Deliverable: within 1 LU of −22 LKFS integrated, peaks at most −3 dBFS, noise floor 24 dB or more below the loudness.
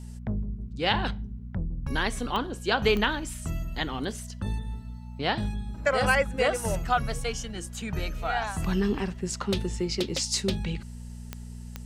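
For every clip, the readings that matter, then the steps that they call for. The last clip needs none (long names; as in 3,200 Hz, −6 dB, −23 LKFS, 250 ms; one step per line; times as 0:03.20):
number of clicks 4; mains hum 60 Hz; hum harmonics up to 240 Hz; level of the hum −37 dBFS; integrated loudness −29.0 LKFS; sample peak −9.0 dBFS; target loudness −22.0 LKFS
→ click removal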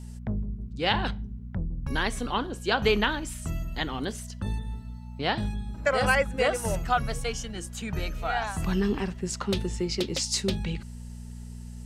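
number of clicks 0; mains hum 60 Hz; hum harmonics up to 240 Hz; level of the hum −37 dBFS
→ hum removal 60 Hz, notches 4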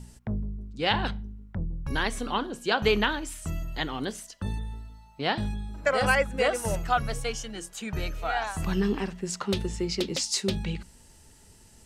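mains hum none found; integrated loudness −29.0 LKFS; sample peak −9.0 dBFS; target loudness −22.0 LKFS
→ level +7 dB
brickwall limiter −3 dBFS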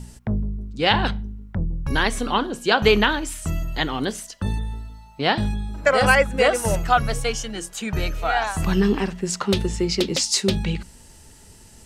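integrated loudness −22.0 LKFS; sample peak −3.0 dBFS; background noise floor −48 dBFS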